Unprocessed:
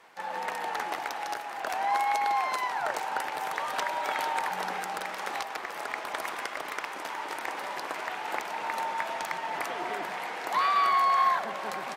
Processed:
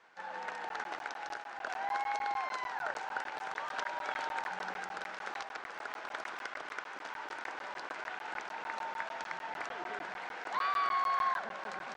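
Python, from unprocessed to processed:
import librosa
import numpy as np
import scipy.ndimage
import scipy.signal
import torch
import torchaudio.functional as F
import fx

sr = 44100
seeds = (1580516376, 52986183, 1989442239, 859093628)

y = scipy.signal.sosfilt(scipy.signal.butter(4, 7100.0, 'lowpass', fs=sr, output='sos'), x)
y = fx.peak_eq(y, sr, hz=1500.0, db=7.5, octaves=0.28)
y = fx.buffer_crackle(y, sr, first_s=0.69, period_s=0.15, block=512, kind='zero')
y = y * 10.0 ** (-8.5 / 20.0)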